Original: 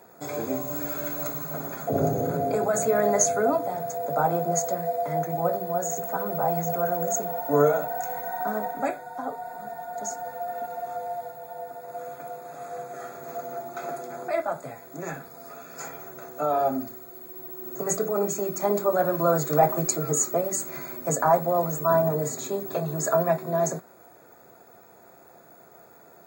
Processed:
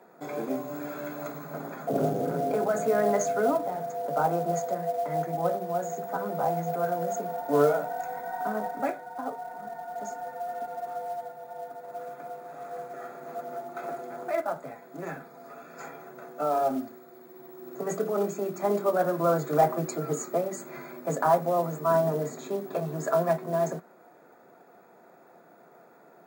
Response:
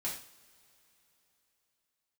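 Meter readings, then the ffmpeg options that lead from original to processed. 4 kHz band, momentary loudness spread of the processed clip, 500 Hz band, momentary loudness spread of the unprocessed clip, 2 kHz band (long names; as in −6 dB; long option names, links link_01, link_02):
can't be measured, 16 LU, −2.0 dB, 16 LU, −2.5 dB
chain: -af "highpass=frequency=160:width=0.5412,highpass=frequency=160:width=1.3066,bass=frequency=250:gain=2,treble=frequency=4000:gain=-13,acrusher=bits=6:mode=log:mix=0:aa=0.000001,volume=-2dB"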